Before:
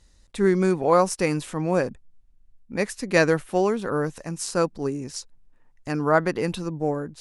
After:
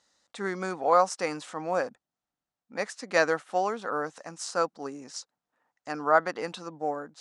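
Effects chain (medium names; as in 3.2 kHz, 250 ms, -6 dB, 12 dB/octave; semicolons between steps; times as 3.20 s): cabinet simulation 360–8000 Hz, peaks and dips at 380 Hz -8 dB, 750 Hz +5 dB, 1.3 kHz +5 dB, 2.5 kHz -4 dB; trim -3.5 dB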